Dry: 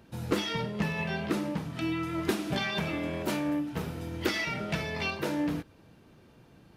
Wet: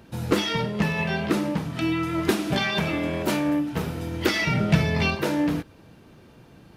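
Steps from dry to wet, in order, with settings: 4.42–5.15 bell 120 Hz +10 dB 2.1 oct; gain +6.5 dB

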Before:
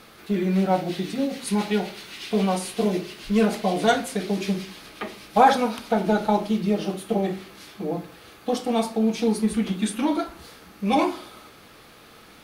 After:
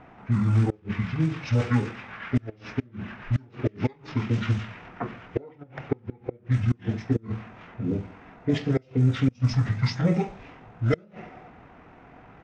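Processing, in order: flipped gate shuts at -12 dBFS, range -31 dB; low-pass opened by the level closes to 2900 Hz, open at -18.5 dBFS; pitch shift -9.5 st; gain +1 dB

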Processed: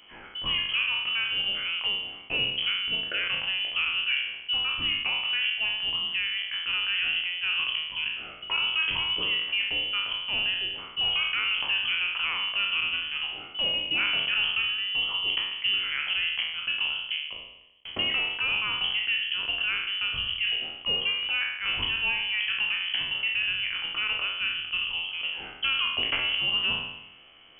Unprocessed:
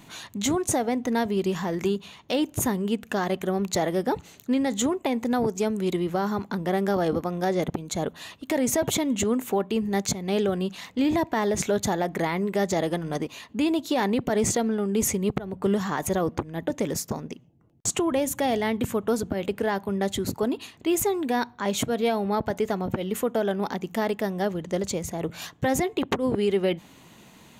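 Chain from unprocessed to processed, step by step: spectral trails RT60 0.94 s; inverted band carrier 3200 Hz; gain -5 dB

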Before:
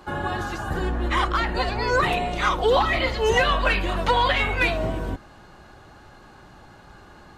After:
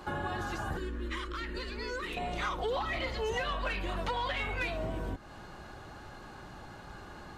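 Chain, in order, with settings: compressor 3:1, threshold -34 dBFS, peak gain reduction 13.5 dB; soft clip -23.5 dBFS, distortion -24 dB; 0.77–2.17 fixed phaser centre 310 Hz, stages 4

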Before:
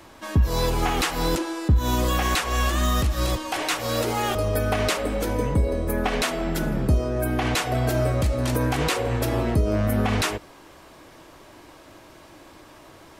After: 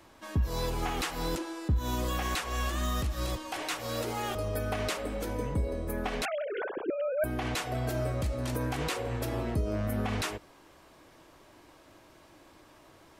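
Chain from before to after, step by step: 6.25–7.24 sine-wave speech; gain -9 dB

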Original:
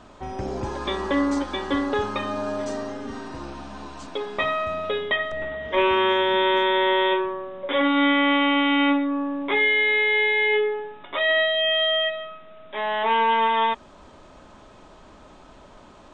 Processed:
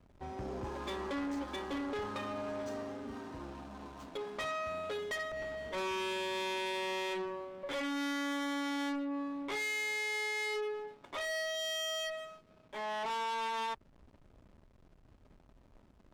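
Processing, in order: backlash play -38 dBFS; tube stage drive 26 dB, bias 0.25; gain -8 dB

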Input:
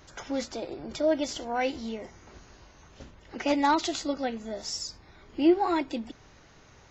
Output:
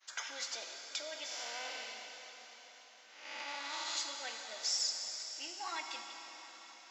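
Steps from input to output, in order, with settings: 1.26–3.97 time blur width 0.397 s; compressor 1.5:1, threshold -49 dBFS, peak gain reduction 11.5 dB; limiter -32.5 dBFS, peak gain reduction 9 dB; HPF 1500 Hz 12 dB/oct; expander -53 dBFS; plate-style reverb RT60 4.8 s, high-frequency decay 1×, DRR 2.5 dB; gain +8 dB

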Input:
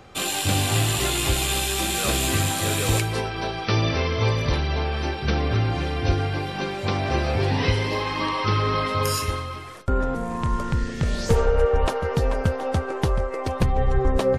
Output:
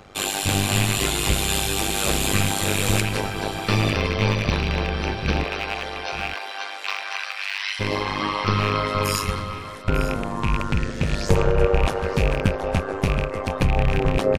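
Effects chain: rattling part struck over -24 dBFS, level -18 dBFS; 5.43–7.79 HPF 380 Hz -> 1500 Hz 24 dB/oct; AM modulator 100 Hz, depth 85%; echo 0.898 s -14.5 dB; gain +4.5 dB

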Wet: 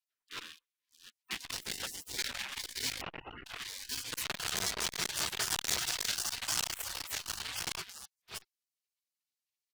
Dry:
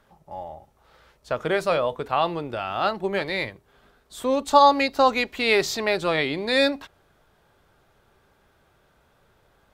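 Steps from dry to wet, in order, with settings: reverse delay 0.367 s, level -6 dB; 1.51–2.17 HPF 660 Hz -> 1400 Hz 24 dB/oct; on a send: echo 1.081 s -5 dB; on the sum: dynamic EQ 1200 Hz, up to +4 dB, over -29 dBFS, Q 1.2; sample leveller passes 5; spectral gate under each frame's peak -25 dB weak; 3.01–3.46 inverted band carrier 2900 Hz; core saturation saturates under 3500 Hz; gain -9 dB

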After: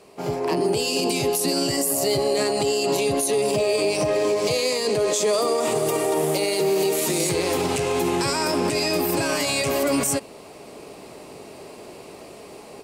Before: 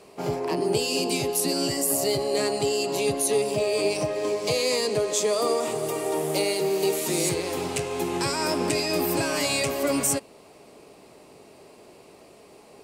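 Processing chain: AGC gain up to 9 dB; limiter -13.5 dBFS, peak gain reduction 10.5 dB

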